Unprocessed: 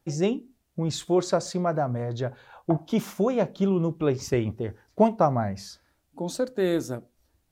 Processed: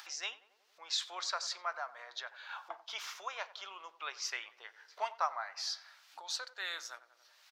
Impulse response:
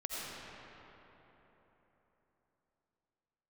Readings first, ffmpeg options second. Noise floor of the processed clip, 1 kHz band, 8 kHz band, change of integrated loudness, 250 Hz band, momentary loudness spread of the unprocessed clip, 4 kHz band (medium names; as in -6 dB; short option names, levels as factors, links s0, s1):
-70 dBFS, -9.0 dB, -4.0 dB, -13.0 dB, under -40 dB, 12 LU, +2.0 dB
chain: -filter_complex "[0:a]highshelf=f=6900:t=q:w=1.5:g=-11.5,asplit=2[s0][s1];[s1]adelay=92,lowpass=f=1600:p=1,volume=0.158,asplit=2[s2][s3];[s3]adelay=92,lowpass=f=1600:p=1,volume=0.52,asplit=2[s4][s5];[s5]adelay=92,lowpass=f=1600:p=1,volume=0.52,asplit=2[s6][s7];[s7]adelay=92,lowpass=f=1600:p=1,volume=0.52,asplit=2[s8][s9];[s9]adelay=92,lowpass=f=1600:p=1,volume=0.52[s10];[s2][s4][s6][s8][s10]amix=inputs=5:normalize=0[s11];[s0][s11]amix=inputs=2:normalize=0,acompressor=mode=upward:threshold=0.0631:ratio=2.5,highpass=f=1100:w=0.5412,highpass=f=1100:w=1.3066,volume=0.841"